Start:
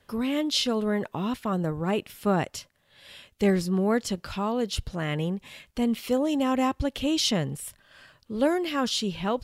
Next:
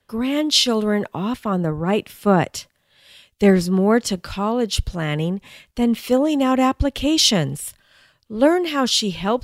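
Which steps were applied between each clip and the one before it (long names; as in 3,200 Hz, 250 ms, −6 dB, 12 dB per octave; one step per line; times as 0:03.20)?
multiband upward and downward expander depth 40%
level +7 dB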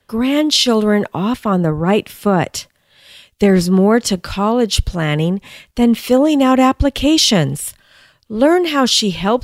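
boost into a limiter +8 dB
level −2 dB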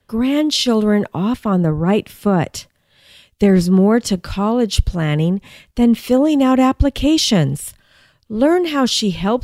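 low-shelf EQ 330 Hz +6.5 dB
level −4.5 dB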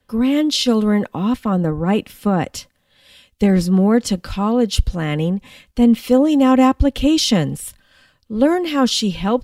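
comb filter 3.9 ms, depth 36%
level −2 dB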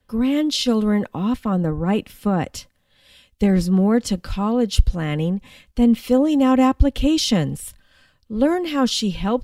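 low-shelf EQ 80 Hz +7.5 dB
level −3.5 dB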